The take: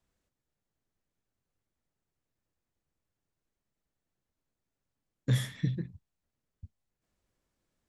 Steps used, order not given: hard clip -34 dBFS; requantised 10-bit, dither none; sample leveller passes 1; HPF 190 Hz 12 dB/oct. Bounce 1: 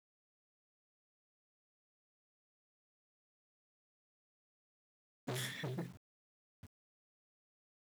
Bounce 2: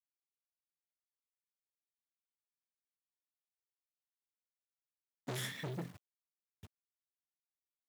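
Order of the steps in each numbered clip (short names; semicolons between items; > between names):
hard clip > sample leveller > HPF > requantised; requantised > sample leveller > hard clip > HPF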